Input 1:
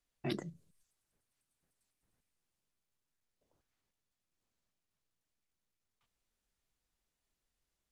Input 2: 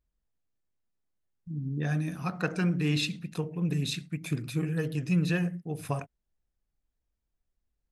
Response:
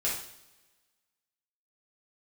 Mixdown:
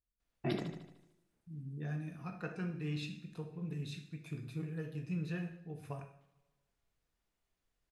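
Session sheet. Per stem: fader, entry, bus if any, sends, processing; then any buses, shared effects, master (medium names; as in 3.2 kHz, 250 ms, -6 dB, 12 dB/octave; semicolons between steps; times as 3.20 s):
0.0 dB, 0.20 s, send -12 dB, echo send -5 dB, none
-15.5 dB, 0.00 s, send -7 dB, no echo send, none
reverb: on, pre-delay 3 ms
echo: feedback delay 75 ms, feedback 54%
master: treble shelf 3.8 kHz -9 dB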